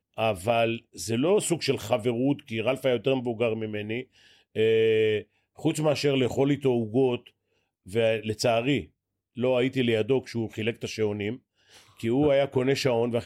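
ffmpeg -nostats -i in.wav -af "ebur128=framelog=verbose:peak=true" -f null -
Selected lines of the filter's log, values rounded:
Integrated loudness:
  I:         -26.1 LUFS
  Threshold: -36.6 LUFS
Loudness range:
  LRA:         2.4 LU
  Threshold: -46.8 LUFS
  LRA low:   -27.8 LUFS
  LRA high:  -25.4 LUFS
True peak:
  Peak:       -9.4 dBFS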